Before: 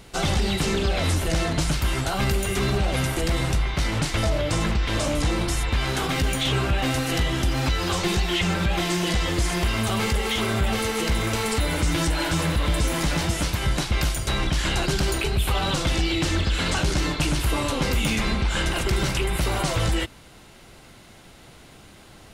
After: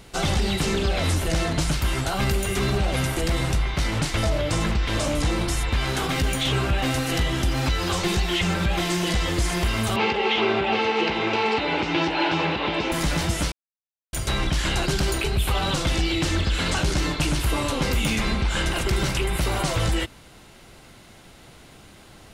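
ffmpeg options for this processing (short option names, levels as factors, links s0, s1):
-filter_complex "[0:a]asettb=1/sr,asplit=3[s0][s1][s2];[s0]atrim=end=9.964[s3];[s1]atrim=start=9.96:end=12.92,asetpts=PTS-STARTPTS,afade=t=in:d=0.004:c=qsin,afade=t=out:st=2.956:d=0.004:c=qsin,highpass=190,equalizer=f=380:t=q:w=4:g=9,equalizer=f=840:t=q:w=4:g=10,equalizer=f=2600:t=q:w=4:g=8,lowpass=f=4500:w=0.5412,lowpass=f=4500:w=1.3066[s4];[s2]atrim=start=12.916[s5];[s3][s4]acrossfade=d=0.004:c1=hsin:c2=qsin[s6];[s6][s5]acrossfade=d=0.004:c1=qsin:c2=hsin,asplit=3[s7][s8][s9];[s7]atrim=end=13.52,asetpts=PTS-STARTPTS,afade=t=out:st=13.516:d=0.004:c=hsin[s10];[s8]atrim=start=13.52:end=14.13,asetpts=PTS-STARTPTS,volume=0[s11];[s9]atrim=start=14.13,asetpts=PTS-STARTPTS,afade=t=in:d=0.004:c=hsin[s12];[s10][s11][s12]concat=n=3:v=0:a=1"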